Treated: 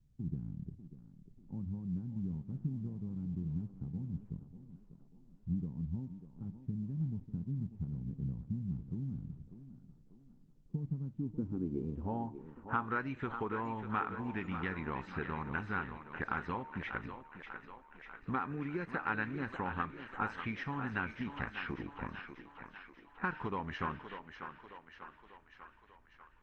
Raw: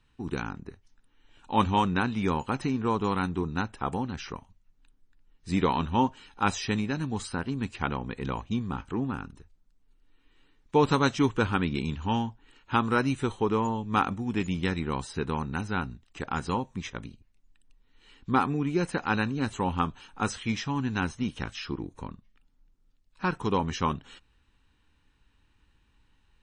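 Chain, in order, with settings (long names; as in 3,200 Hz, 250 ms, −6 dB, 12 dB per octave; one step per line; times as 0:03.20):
low-pass that shuts in the quiet parts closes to 1,100 Hz, open at −26.5 dBFS
high-shelf EQ 2,000 Hz +5 dB
hum removal 305.4 Hz, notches 39
downward compressor 4 to 1, threshold −34 dBFS, peak gain reduction 14.5 dB
low-pass filter sweep 160 Hz → 1,800 Hz, 0:11.03–0:12.99
feedback echo with a high-pass in the loop 593 ms, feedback 63%, high-pass 280 Hz, level −8 dB
level −2.5 dB
Opus 16 kbit/s 48,000 Hz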